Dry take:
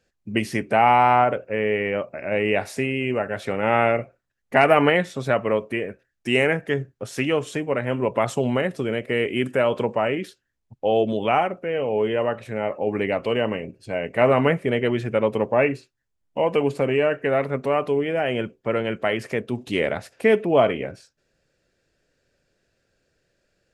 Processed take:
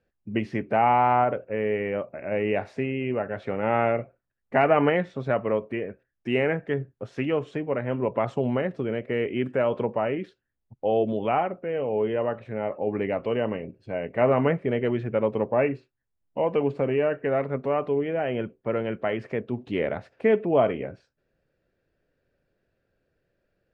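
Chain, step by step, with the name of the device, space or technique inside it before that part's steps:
phone in a pocket (low-pass filter 3,800 Hz 12 dB per octave; high-shelf EQ 2,000 Hz −9.5 dB)
level −2.5 dB

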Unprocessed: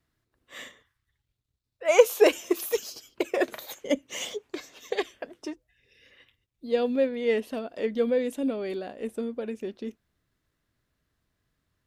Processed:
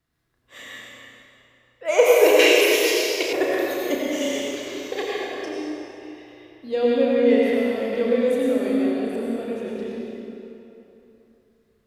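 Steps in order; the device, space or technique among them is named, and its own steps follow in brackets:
tunnel (flutter between parallel walls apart 5.7 metres, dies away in 0.28 s; convolution reverb RT60 3.1 s, pre-delay 81 ms, DRR −5 dB)
0:02.39–0:03.33: meter weighting curve D
level −1 dB

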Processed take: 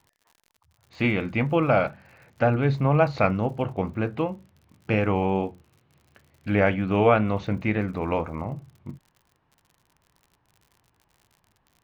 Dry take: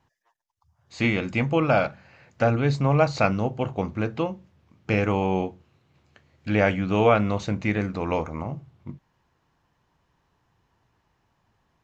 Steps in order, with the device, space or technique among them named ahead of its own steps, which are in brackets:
lo-fi chain (low-pass filter 3,100 Hz 12 dB per octave; tape wow and flutter; surface crackle 68 per second −44 dBFS)

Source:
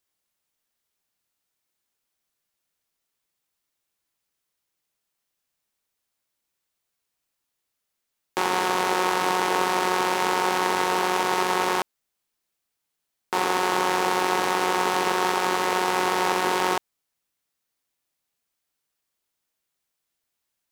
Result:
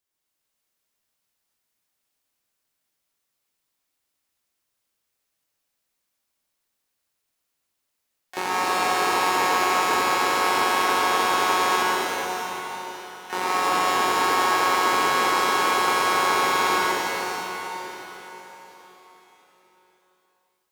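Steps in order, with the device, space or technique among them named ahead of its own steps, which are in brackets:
shimmer-style reverb (pitch-shifted copies added +12 semitones −10 dB; convolution reverb RT60 4.4 s, pre-delay 87 ms, DRR −6 dB)
level −4.5 dB

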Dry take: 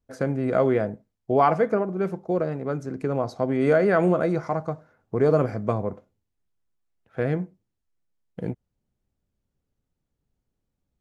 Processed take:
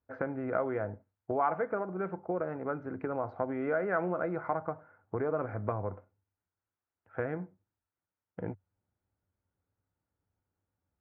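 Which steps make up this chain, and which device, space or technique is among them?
bass amplifier (downward compressor 3 to 1, threshold −27 dBFS, peak gain reduction 10 dB; loudspeaker in its box 84–2,200 Hz, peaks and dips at 97 Hz +8 dB, 140 Hz −10 dB, 220 Hz −7 dB, 400 Hz −3 dB, 890 Hz +5 dB, 1,400 Hz +6 dB)
level −2.5 dB

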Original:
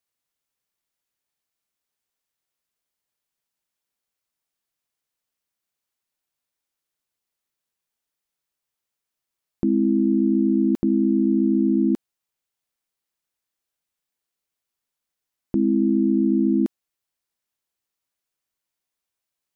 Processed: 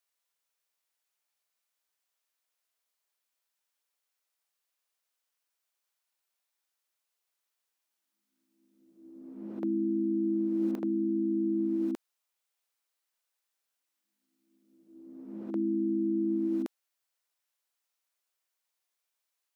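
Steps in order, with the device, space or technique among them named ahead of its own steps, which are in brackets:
ghost voice (reversed playback; convolution reverb RT60 1.2 s, pre-delay 39 ms, DRR 3.5 dB; reversed playback; high-pass filter 540 Hz 12 dB per octave)
level −1 dB

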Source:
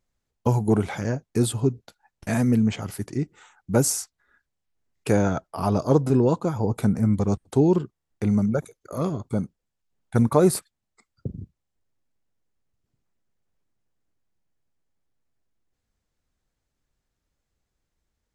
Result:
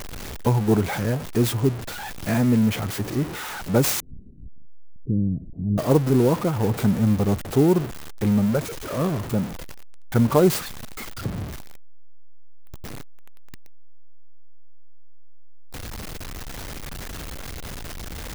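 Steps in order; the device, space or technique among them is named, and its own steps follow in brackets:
early CD player with a faulty converter (converter with a step at zero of −27 dBFS; converter with an unsteady clock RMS 0.029 ms)
0:04.00–0:05.78: inverse Chebyshev low-pass filter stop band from 1,200 Hz, stop band 70 dB

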